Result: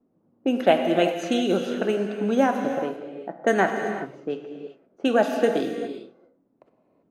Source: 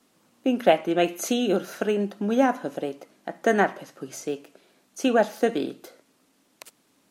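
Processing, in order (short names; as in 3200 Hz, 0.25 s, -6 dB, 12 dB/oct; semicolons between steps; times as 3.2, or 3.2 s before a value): low-pass opened by the level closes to 470 Hz, open at -19.5 dBFS; non-linear reverb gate 0.42 s flat, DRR 5 dB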